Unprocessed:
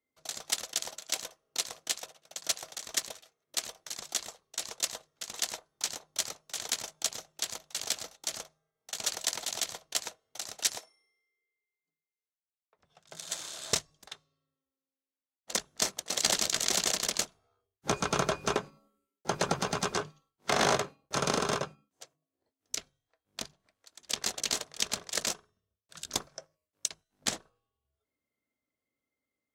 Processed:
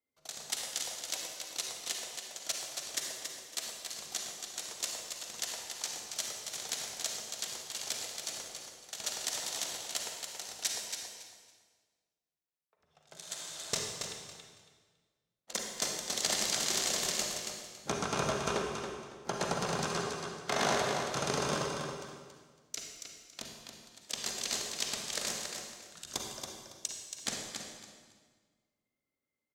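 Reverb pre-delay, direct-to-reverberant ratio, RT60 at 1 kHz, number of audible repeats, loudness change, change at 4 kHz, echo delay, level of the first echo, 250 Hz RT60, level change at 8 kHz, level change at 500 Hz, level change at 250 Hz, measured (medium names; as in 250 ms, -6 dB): 37 ms, -1.0 dB, 1.6 s, 3, -3.0 dB, -2.5 dB, 278 ms, -6.5 dB, 1.8 s, -2.5 dB, -2.0 dB, -2.0 dB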